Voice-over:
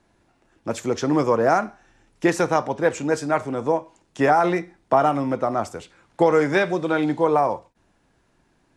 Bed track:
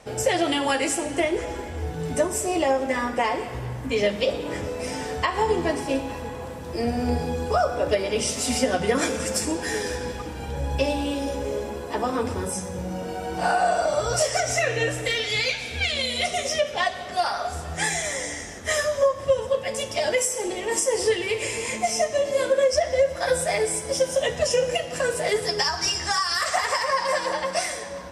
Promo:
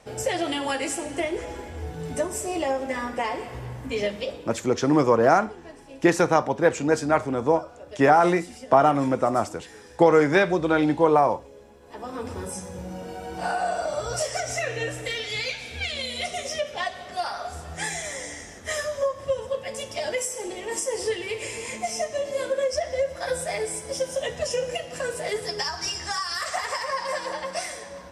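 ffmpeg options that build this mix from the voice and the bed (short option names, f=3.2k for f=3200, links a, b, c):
-filter_complex "[0:a]adelay=3800,volume=0.5dB[a];[1:a]volume=10.5dB,afade=t=out:st=4.03:d=0.57:silence=0.16788,afade=t=in:st=11.8:d=0.59:silence=0.188365[b];[a][b]amix=inputs=2:normalize=0"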